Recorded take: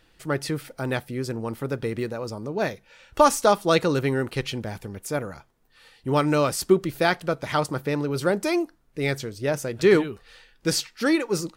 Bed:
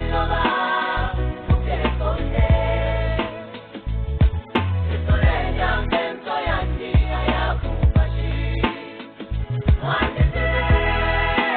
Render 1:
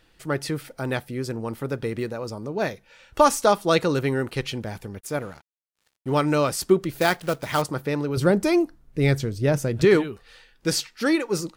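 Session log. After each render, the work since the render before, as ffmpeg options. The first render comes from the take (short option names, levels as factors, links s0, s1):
-filter_complex "[0:a]asplit=3[s0][s1][s2];[s0]afade=t=out:st=4.99:d=0.02[s3];[s1]aeval=exprs='sgn(val(0))*max(abs(val(0))-0.00422,0)':c=same,afade=t=in:st=4.99:d=0.02,afade=t=out:st=6.18:d=0.02[s4];[s2]afade=t=in:st=6.18:d=0.02[s5];[s3][s4][s5]amix=inputs=3:normalize=0,asettb=1/sr,asplit=3[s6][s7][s8];[s6]atrim=end=6.974[s9];[s7]atrim=start=6.97:end=7.62,asetpts=PTS-STARTPTS,afade=t=in:d=0.004:c=qsin,afade=t=out:st=0.646:d=0.004:c=qsin,acrusher=bits=3:mode=log:mix=0:aa=0.000001[s10];[s8]atrim=start=7.616[s11];[s9][s10]acrossfade=d=0.004:c1=hsin:c2=qsin[s12];[s12][s11]acrossfade=d=0.004:c1=qsin:c2=hsin,asettb=1/sr,asplit=3[s13][s14][s15];[s13]atrim=end=8.174[s16];[s14]atrim=start=8.17:end=9.85,asetpts=PTS-STARTPTS,afade=t=in:d=0.004:c=qsin,afade=t=out:st=1.676:d=0.004:c=qsin,lowshelf=f=250:g=12[s17];[s15]atrim=start=9.846[s18];[s16][s17]acrossfade=d=0.004:c1=hsin:c2=qsin[s19];[s19][s18]acrossfade=d=0.004:c1=qsin:c2=hsin"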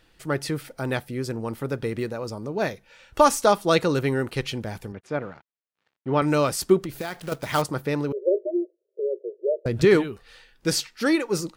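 -filter_complex "[0:a]asettb=1/sr,asplit=3[s0][s1][s2];[s0]atrim=end=4.924[s3];[s1]atrim=start=4.92:end=6.22,asetpts=PTS-STARTPTS,afade=t=in:d=0.004:c=qsin,afade=t=out:st=1.296:d=0.004:c=qsin,highpass=110,lowpass=2800[s4];[s2]atrim=start=6.216[s5];[s3][s4]acrossfade=d=0.004:c1=hsin:c2=qsin[s6];[s6][s5]acrossfade=d=0.004:c1=qsin:c2=hsin,asettb=1/sr,asplit=3[s7][s8][s9];[s7]atrim=end=6.844[s10];[s8]atrim=start=6.84:end=7.32,asetpts=PTS-STARTPTS,afade=t=in:d=0.004:c=qsin,afade=t=out:st=0.476:d=0.004:c=qsin,acompressor=threshold=0.0501:ratio=12:attack=3.2:release=140:knee=1:detection=peak[s11];[s9]atrim=start=7.316[s12];[s10][s11]acrossfade=d=0.004:c1=hsin:c2=qsin[s13];[s13][s12]acrossfade=d=0.004:c1=qsin:c2=hsin,asettb=1/sr,asplit=3[s14][s15][s16];[s14]atrim=end=8.124[s17];[s15]atrim=start=8.12:end=9.66,asetpts=PTS-STARTPTS,afade=t=in:d=0.004:c=qsin,afade=t=out:st=1.536:d=0.004:c=qsin,asuperpass=centerf=470:order=20:qfactor=1.7[s18];[s16]atrim=start=9.656[s19];[s17][s18]acrossfade=d=0.004:c1=hsin:c2=qsin[s20];[s20][s19]acrossfade=d=0.004:c1=qsin:c2=hsin"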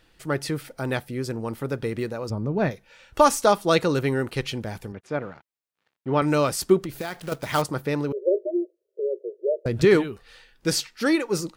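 -filter_complex "[0:a]asplit=3[s0][s1][s2];[s0]afade=t=out:st=2.29:d=0.02[s3];[s1]bass=f=250:g=10,treble=f=4000:g=-14,afade=t=in:st=2.29:d=0.02,afade=t=out:st=2.7:d=0.02[s4];[s2]afade=t=in:st=2.7:d=0.02[s5];[s3][s4][s5]amix=inputs=3:normalize=0"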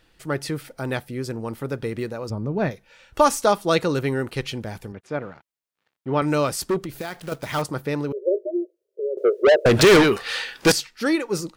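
-filter_complex "[0:a]asettb=1/sr,asplit=3[s0][s1][s2];[s0]atrim=end=6.584[s3];[s1]atrim=start=6.58:end=7.69,asetpts=PTS-STARTPTS,afade=t=in:d=0.004:c=qsin,afade=t=out:st=1.106:d=0.004:c=qsin,asoftclip=type=hard:threshold=0.126[s4];[s2]atrim=start=7.686[s5];[s3][s4]acrossfade=d=0.004:c1=hsin:c2=qsin[s6];[s6][s5]acrossfade=d=0.004:c1=qsin:c2=hsin,asettb=1/sr,asplit=3[s7][s8][s9];[s7]atrim=end=9.174[s10];[s8]atrim=start=9.17:end=10.72,asetpts=PTS-STARTPTS,afade=t=in:d=0.004:c=qsin,afade=t=out:st=1.546:d=0.004:c=qsin,asplit=2[s11][s12];[s12]highpass=f=720:p=1,volume=31.6,asoftclip=type=tanh:threshold=0.501[s13];[s11][s13]amix=inputs=2:normalize=0,lowpass=f=7500:p=1,volume=0.501[s14];[s9]atrim=start=10.716[s15];[s10][s14]acrossfade=d=0.004:c1=hsin:c2=qsin[s16];[s16][s15]acrossfade=d=0.004:c1=qsin:c2=hsin"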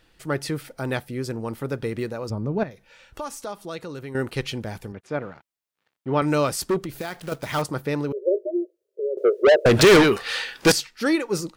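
-filter_complex "[0:a]asettb=1/sr,asplit=3[s0][s1][s2];[s0]atrim=end=2.634[s3];[s1]atrim=start=2.63:end=4.15,asetpts=PTS-STARTPTS,afade=t=in:d=0.004:c=qsin,afade=t=out:st=1.516:d=0.004:c=qsin,acompressor=threshold=0.00794:ratio=2:attack=3.2:release=140:knee=1:detection=peak[s4];[s2]atrim=start=4.146[s5];[s3][s4]acrossfade=d=0.004:c1=hsin:c2=qsin[s6];[s6][s5]acrossfade=d=0.004:c1=qsin:c2=hsin"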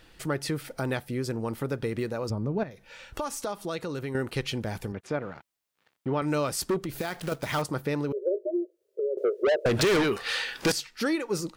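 -filter_complex "[0:a]asplit=2[s0][s1];[s1]alimiter=limit=0.188:level=0:latency=1:release=167,volume=0.708[s2];[s0][s2]amix=inputs=2:normalize=0,acompressor=threshold=0.0251:ratio=2"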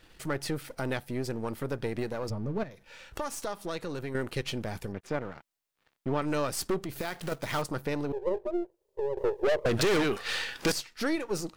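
-af "aeval=exprs='if(lt(val(0),0),0.447*val(0),val(0))':c=same"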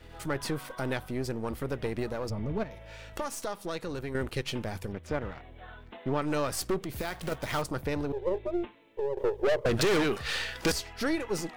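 -filter_complex "[1:a]volume=0.0447[s0];[0:a][s0]amix=inputs=2:normalize=0"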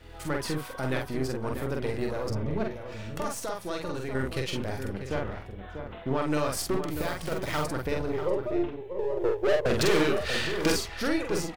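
-filter_complex "[0:a]asplit=2[s0][s1];[s1]adelay=46,volume=0.708[s2];[s0][s2]amix=inputs=2:normalize=0,asplit=2[s3][s4];[s4]adelay=641.4,volume=0.398,highshelf=f=4000:g=-14.4[s5];[s3][s5]amix=inputs=2:normalize=0"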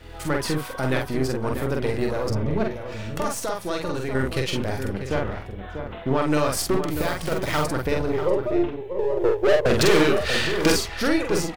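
-af "volume=2"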